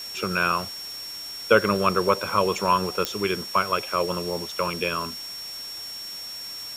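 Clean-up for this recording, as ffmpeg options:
-af "adeclick=t=4,bandreject=f=5500:w=30,afwtdn=0.0079"

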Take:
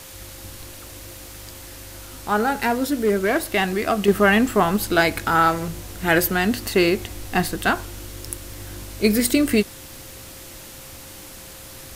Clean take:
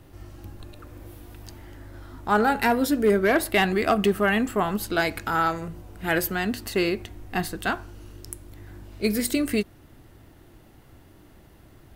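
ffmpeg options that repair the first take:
-af "adeclick=t=4,bandreject=f=530:w=30,afwtdn=0.01,asetnsamples=n=441:p=0,asendcmd='4.08 volume volume -6dB',volume=1"

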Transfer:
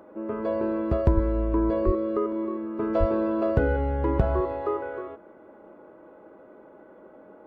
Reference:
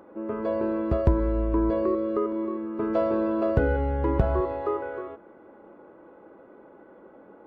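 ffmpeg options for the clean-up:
-filter_complex "[0:a]bandreject=f=620:w=30,asplit=3[s0][s1][s2];[s0]afade=t=out:st=1.14:d=0.02[s3];[s1]highpass=f=140:w=0.5412,highpass=f=140:w=1.3066,afade=t=in:st=1.14:d=0.02,afade=t=out:st=1.26:d=0.02[s4];[s2]afade=t=in:st=1.26:d=0.02[s5];[s3][s4][s5]amix=inputs=3:normalize=0,asplit=3[s6][s7][s8];[s6]afade=t=out:st=1.85:d=0.02[s9];[s7]highpass=f=140:w=0.5412,highpass=f=140:w=1.3066,afade=t=in:st=1.85:d=0.02,afade=t=out:st=1.97:d=0.02[s10];[s8]afade=t=in:st=1.97:d=0.02[s11];[s9][s10][s11]amix=inputs=3:normalize=0,asplit=3[s12][s13][s14];[s12]afade=t=out:st=2.99:d=0.02[s15];[s13]highpass=f=140:w=0.5412,highpass=f=140:w=1.3066,afade=t=in:st=2.99:d=0.02,afade=t=out:st=3.11:d=0.02[s16];[s14]afade=t=in:st=3.11:d=0.02[s17];[s15][s16][s17]amix=inputs=3:normalize=0"

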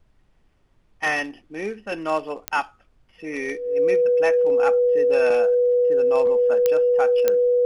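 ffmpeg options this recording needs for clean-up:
-af "adeclick=t=4,bandreject=f=490:w=30,agate=range=0.0891:threshold=0.00282"

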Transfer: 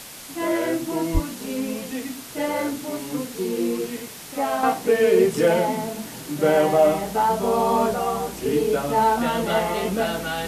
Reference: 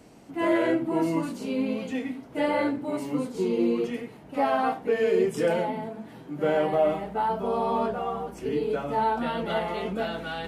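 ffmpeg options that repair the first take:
-filter_complex "[0:a]asplit=3[s0][s1][s2];[s0]afade=t=out:st=1.13:d=0.02[s3];[s1]highpass=f=140:w=0.5412,highpass=f=140:w=1.3066,afade=t=in:st=1.13:d=0.02,afade=t=out:st=1.25:d=0.02[s4];[s2]afade=t=in:st=1.25:d=0.02[s5];[s3][s4][s5]amix=inputs=3:normalize=0,afwtdn=0.013,asetnsamples=n=441:p=0,asendcmd='4.63 volume volume -6dB',volume=1"

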